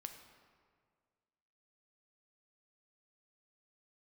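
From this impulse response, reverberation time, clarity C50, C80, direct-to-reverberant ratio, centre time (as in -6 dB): 1.9 s, 7.5 dB, 9.0 dB, 5.5 dB, 28 ms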